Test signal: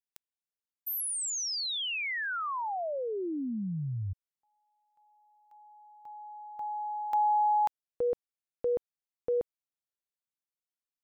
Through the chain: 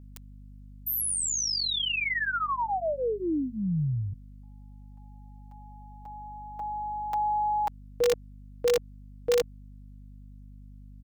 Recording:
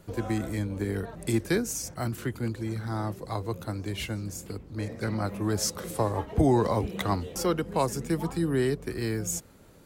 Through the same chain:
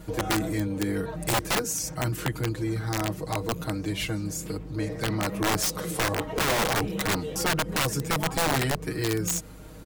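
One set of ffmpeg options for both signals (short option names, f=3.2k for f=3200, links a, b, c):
-filter_complex "[0:a]aecho=1:1:6.4:0.97,asplit=2[a][b];[b]acompressor=threshold=-35dB:ratio=12:attack=0.99:release=82:knee=6:detection=rms,volume=2.5dB[c];[a][c]amix=inputs=2:normalize=0,aeval=exprs='val(0)+0.00631*(sin(2*PI*50*n/s)+sin(2*PI*2*50*n/s)/2+sin(2*PI*3*50*n/s)/3+sin(2*PI*4*50*n/s)/4+sin(2*PI*5*50*n/s)/5)':c=same,aeval=exprs='(mod(6.68*val(0)+1,2)-1)/6.68':c=same,volume=-2dB"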